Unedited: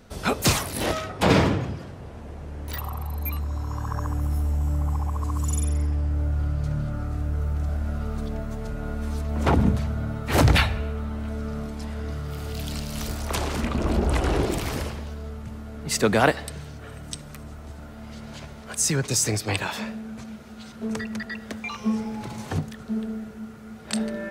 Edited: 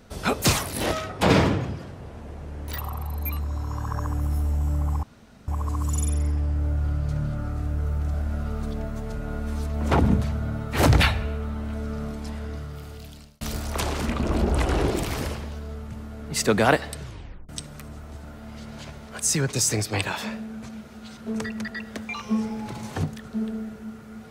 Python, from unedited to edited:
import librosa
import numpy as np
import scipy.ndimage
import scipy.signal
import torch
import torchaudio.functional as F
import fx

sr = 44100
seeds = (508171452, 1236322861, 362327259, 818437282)

y = fx.edit(x, sr, fx.insert_room_tone(at_s=5.03, length_s=0.45),
    fx.fade_out_span(start_s=11.82, length_s=1.14),
    fx.tape_stop(start_s=16.55, length_s=0.49), tone=tone)